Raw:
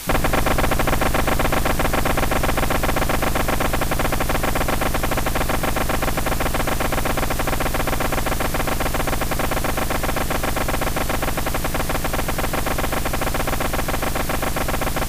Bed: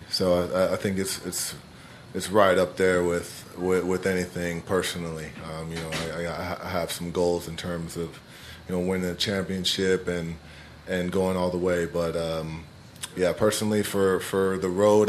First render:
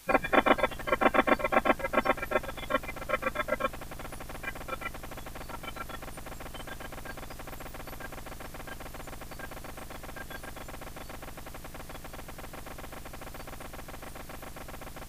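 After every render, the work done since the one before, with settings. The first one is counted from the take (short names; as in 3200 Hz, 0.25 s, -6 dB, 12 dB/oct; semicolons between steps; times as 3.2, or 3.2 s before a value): noise print and reduce 21 dB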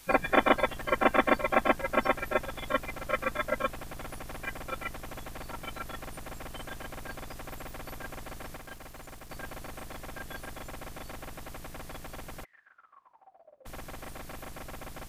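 8.57–9.3 G.711 law mismatch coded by A; 12.43–13.65 band-pass 2100 Hz -> 510 Hz, Q 16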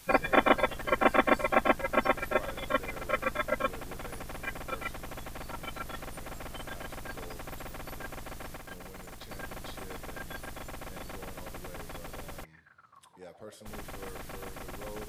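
add bed -25.5 dB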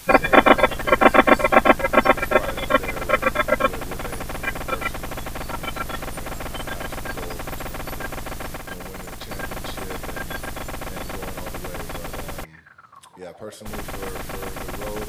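gain +11 dB; limiter -1 dBFS, peak gain reduction 1 dB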